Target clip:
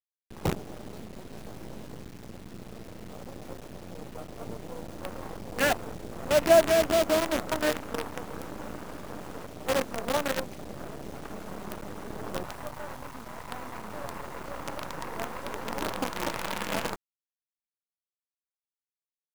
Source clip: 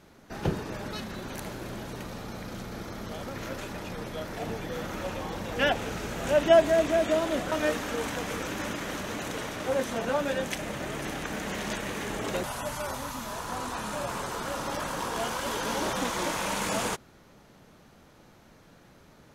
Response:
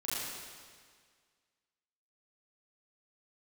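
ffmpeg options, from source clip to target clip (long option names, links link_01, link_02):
-filter_complex "[0:a]afwtdn=0.0251,acrusher=bits=5:dc=4:mix=0:aa=0.000001,asettb=1/sr,asplit=3[link_01][link_02][link_03];[link_01]atrim=end=1.314[link_04];[link_02]atrim=start=1.31:end=2.02,asetpts=PTS-STARTPTS,afade=type=in:duration=0.004:curve=qsin,afade=type=out:start_time=0.706:duration=0.004:curve=qsin,asplit=2[link_05][link_06];[link_06]adelay=19,volume=-7dB[link_07];[link_05][link_07]amix=inputs=2:normalize=0,atrim=end_sample=31311[link_08];[link_03]atrim=start=2.016[link_09];[link_04][link_08]acrossfade=duration=0.004:curve1=hsin:curve2=qsin[link_10];[link_10][link_09]acrossfade=duration=0.004:curve1=qsin:curve2=hsin"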